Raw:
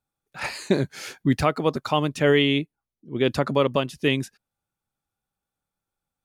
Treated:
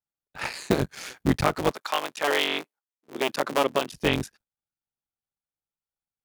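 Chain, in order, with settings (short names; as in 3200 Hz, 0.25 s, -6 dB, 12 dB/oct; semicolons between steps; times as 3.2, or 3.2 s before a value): cycle switcher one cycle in 3, muted; 1.7–3.9 HPF 810 Hz -> 270 Hz 12 dB/oct; gate -53 dBFS, range -13 dB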